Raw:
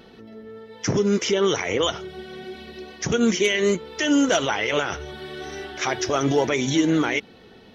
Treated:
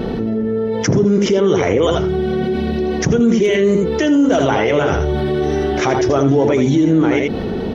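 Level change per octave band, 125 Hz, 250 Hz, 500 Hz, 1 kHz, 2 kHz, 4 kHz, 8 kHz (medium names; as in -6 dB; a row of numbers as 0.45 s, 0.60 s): +12.0 dB, +9.0 dB, +9.0 dB, +6.5 dB, +2.0 dB, -1.0 dB, no reading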